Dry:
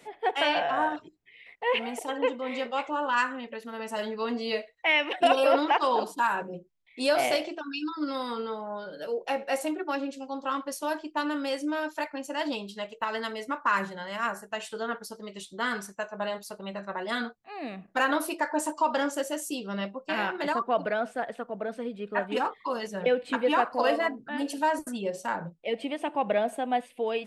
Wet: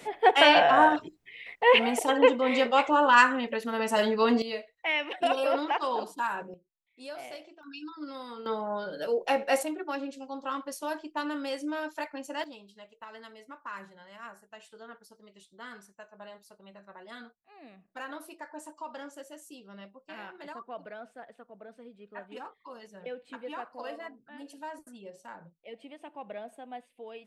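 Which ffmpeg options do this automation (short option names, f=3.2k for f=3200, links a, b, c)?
-af "asetnsamples=n=441:p=0,asendcmd='4.42 volume volume -5dB;6.54 volume volume -17dB;7.63 volume volume -9dB;8.46 volume volume 3dB;9.63 volume volume -3.5dB;12.44 volume volume -15dB',volume=7dB"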